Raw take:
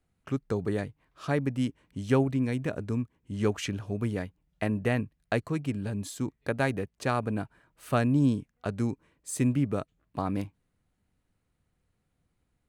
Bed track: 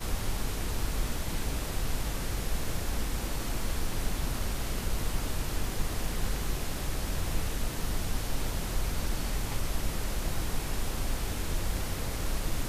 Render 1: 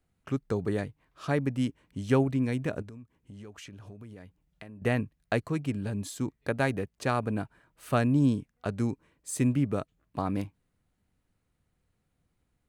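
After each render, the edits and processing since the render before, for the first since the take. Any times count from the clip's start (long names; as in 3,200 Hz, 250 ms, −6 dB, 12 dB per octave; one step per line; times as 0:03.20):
0:02.82–0:04.82: downward compressor 8 to 1, threshold −43 dBFS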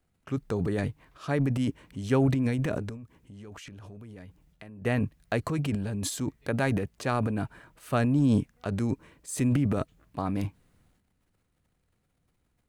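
transient designer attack −1 dB, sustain +11 dB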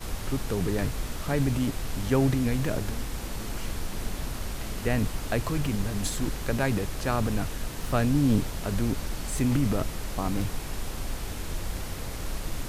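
mix in bed track −1.5 dB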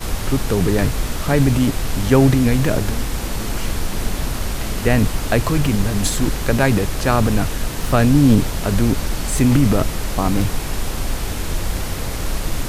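level +10.5 dB
brickwall limiter −2 dBFS, peak gain reduction 2 dB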